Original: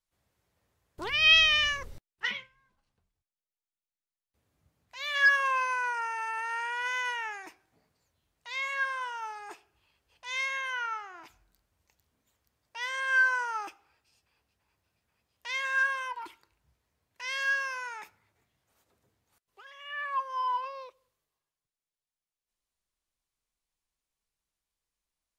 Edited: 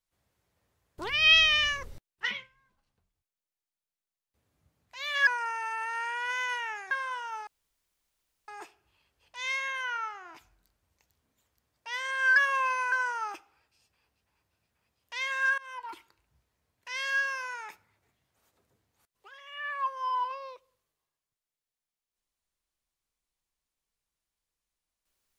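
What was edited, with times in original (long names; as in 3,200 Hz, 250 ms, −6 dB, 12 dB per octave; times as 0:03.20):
0:05.27–0:05.83: move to 0:13.25
0:07.47–0:08.81: remove
0:09.37: splice in room tone 1.01 s
0:15.91–0:16.23: fade in, from −23 dB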